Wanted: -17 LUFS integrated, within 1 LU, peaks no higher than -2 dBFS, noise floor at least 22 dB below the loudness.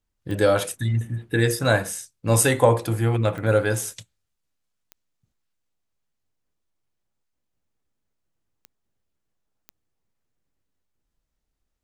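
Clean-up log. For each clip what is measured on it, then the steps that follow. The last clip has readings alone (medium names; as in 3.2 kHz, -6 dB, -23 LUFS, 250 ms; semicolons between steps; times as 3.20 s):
clicks found 5; loudness -22.0 LUFS; peak level -4.0 dBFS; loudness target -17.0 LUFS
-> de-click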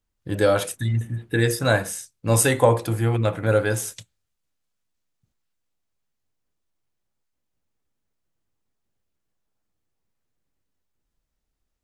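clicks found 0; loudness -22.0 LUFS; peak level -4.0 dBFS; loudness target -17.0 LUFS
-> trim +5 dB; peak limiter -2 dBFS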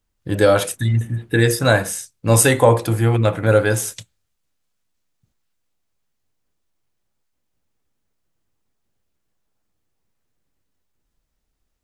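loudness -17.0 LUFS; peak level -2.0 dBFS; noise floor -73 dBFS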